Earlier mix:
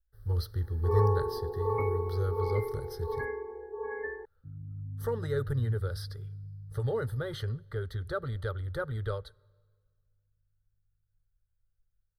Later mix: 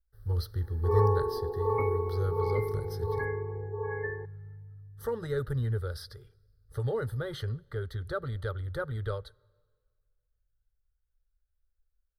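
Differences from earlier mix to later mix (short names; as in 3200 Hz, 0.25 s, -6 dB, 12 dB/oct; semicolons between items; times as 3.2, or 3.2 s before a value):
first sound: send on; second sound: entry -2.25 s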